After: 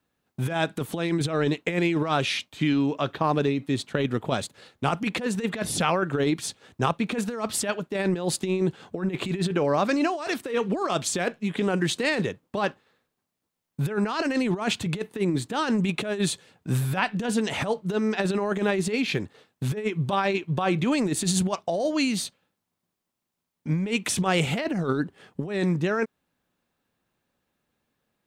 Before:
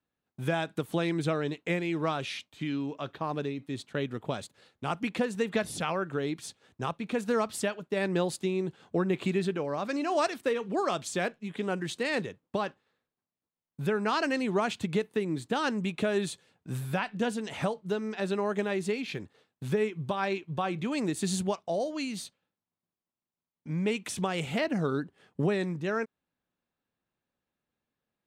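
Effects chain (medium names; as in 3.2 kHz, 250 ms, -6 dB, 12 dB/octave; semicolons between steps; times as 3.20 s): compressor with a negative ratio -31 dBFS, ratio -0.5; trim +7.5 dB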